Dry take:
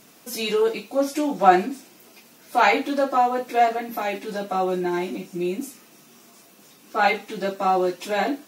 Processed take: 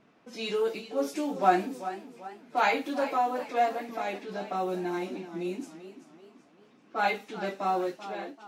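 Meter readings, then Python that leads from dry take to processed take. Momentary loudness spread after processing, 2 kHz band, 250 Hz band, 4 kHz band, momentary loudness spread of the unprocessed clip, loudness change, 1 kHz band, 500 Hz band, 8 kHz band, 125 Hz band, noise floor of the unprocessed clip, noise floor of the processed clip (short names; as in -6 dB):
13 LU, -7.5 dB, -7.5 dB, -8.0 dB, 12 LU, -7.5 dB, -7.5 dB, -7.5 dB, -10.5 dB, -7.5 dB, -52 dBFS, -61 dBFS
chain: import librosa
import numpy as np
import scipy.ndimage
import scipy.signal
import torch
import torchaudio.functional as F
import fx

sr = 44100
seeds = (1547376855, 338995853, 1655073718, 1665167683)

y = fx.fade_out_tail(x, sr, length_s=0.72)
y = fx.env_lowpass(y, sr, base_hz=2000.0, full_db=-19.5)
y = fx.echo_warbled(y, sr, ms=386, feedback_pct=43, rate_hz=2.8, cents=103, wet_db=-13)
y = y * 10.0 ** (-7.5 / 20.0)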